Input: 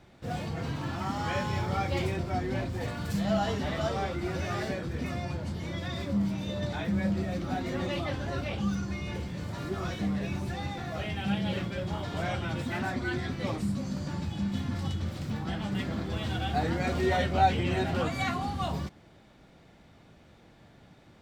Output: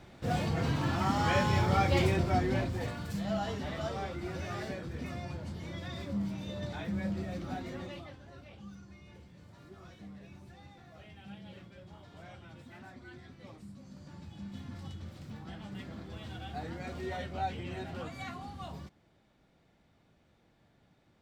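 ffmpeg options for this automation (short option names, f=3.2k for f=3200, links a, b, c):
-af "volume=10dB,afade=t=out:st=2.28:d=0.8:silence=0.354813,afade=t=out:st=7.5:d=0.67:silence=0.237137,afade=t=in:st=13.76:d=0.91:silence=0.446684"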